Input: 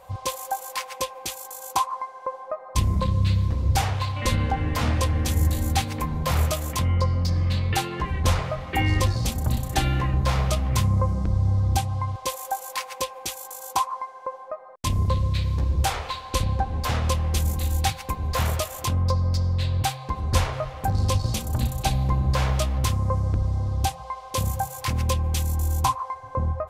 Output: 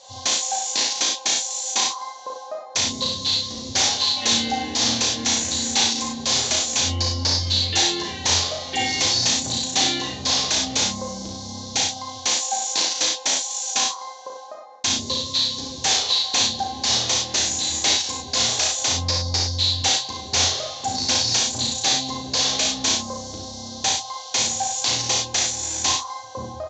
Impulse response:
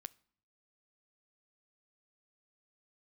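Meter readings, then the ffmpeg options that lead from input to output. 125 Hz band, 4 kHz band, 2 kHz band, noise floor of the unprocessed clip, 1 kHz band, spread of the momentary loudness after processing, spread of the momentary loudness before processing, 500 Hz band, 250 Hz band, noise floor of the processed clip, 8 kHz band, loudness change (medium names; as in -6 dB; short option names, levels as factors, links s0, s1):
-11.5 dB, +15.0 dB, +5.0 dB, -42 dBFS, -1.0 dB, 7 LU, 8 LU, -0.5 dB, 0.0 dB, -37 dBFS, +14.5 dB, +5.0 dB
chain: -filter_complex "[0:a]aemphasis=mode=production:type=75kf,bandreject=f=920:w=9.3,flanger=delay=7.4:depth=1.9:regen=-46:speed=0.32:shape=triangular,aexciter=amount=8.1:drive=8.2:freq=3600,aresample=16000,asoftclip=type=tanh:threshold=0.335,aresample=44100,highpass=160,equalizer=f=160:t=q:w=4:g=-8,equalizer=f=270:t=q:w=4:g=4,equalizer=f=810:t=q:w=4:g=6,equalizer=f=1300:t=q:w=4:g=-8,equalizer=f=5000:t=q:w=4:g=-7,lowpass=f=5300:w=0.5412,lowpass=f=5300:w=1.3066,asplit=2[s0][s1];[s1]adelay=35,volume=0.668[s2];[s0][s2]amix=inputs=2:normalize=0,aecho=1:1:57|69:0.562|0.501"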